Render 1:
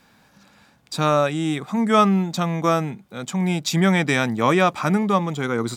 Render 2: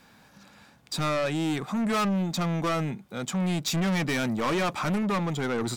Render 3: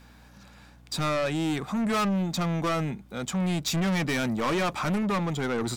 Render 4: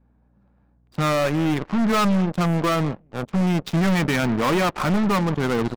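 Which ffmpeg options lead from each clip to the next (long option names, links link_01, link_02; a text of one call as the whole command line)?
ffmpeg -i in.wav -af "asoftclip=type=tanh:threshold=-23.5dB" out.wav
ffmpeg -i in.wav -af "aeval=exprs='val(0)+0.00224*(sin(2*PI*60*n/s)+sin(2*PI*2*60*n/s)/2+sin(2*PI*3*60*n/s)/3+sin(2*PI*4*60*n/s)/4+sin(2*PI*5*60*n/s)/5)':channel_layout=same" out.wav
ffmpeg -i in.wav -af "aecho=1:1:188:0.106,adynamicsmooth=sensitivity=3.5:basefreq=680,aeval=exprs='0.0794*(cos(1*acos(clip(val(0)/0.0794,-1,1)))-cos(1*PI/2))+0.0141*(cos(2*acos(clip(val(0)/0.0794,-1,1)))-cos(2*PI/2))+0.00891*(cos(3*acos(clip(val(0)/0.0794,-1,1)))-cos(3*PI/2))+0.01*(cos(7*acos(clip(val(0)/0.0794,-1,1)))-cos(7*PI/2))':channel_layout=same,volume=7dB" out.wav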